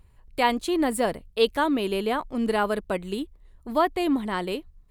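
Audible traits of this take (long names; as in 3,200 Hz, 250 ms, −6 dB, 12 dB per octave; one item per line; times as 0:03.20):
background noise floor −57 dBFS
spectral slope −3.0 dB per octave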